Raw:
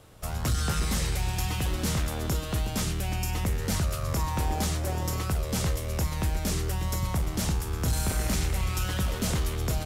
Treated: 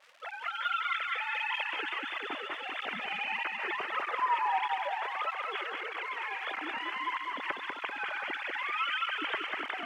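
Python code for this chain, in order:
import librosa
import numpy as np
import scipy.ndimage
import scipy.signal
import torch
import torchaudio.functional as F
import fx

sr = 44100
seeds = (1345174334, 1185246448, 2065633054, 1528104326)

p1 = fx.sine_speech(x, sr)
p2 = np.sign(p1) * np.maximum(np.abs(p1) - 10.0 ** (-40.0 / 20.0), 0.0)
p3 = p1 + F.gain(torch.from_numpy(p2), -2.0).numpy()
p4 = fx.dmg_crackle(p3, sr, seeds[0], per_s=200.0, level_db=-29.0)
p5 = fx.bandpass_q(p4, sr, hz=2000.0, q=1.3)
p6 = p5 + fx.echo_feedback(p5, sr, ms=195, feedback_pct=60, wet_db=-3.5, dry=0)
p7 = fx.flanger_cancel(p6, sr, hz=1.6, depth_ms=4.4)
y = F.gain(torch.from_numpy(p7), -4.0).numpy()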